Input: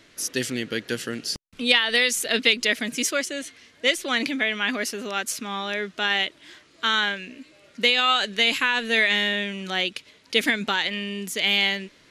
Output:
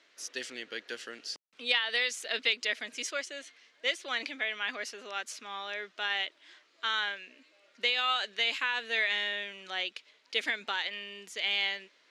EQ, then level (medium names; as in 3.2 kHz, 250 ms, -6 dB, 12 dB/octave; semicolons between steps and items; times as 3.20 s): band-pass 520–6200 Hz; -8.5 dB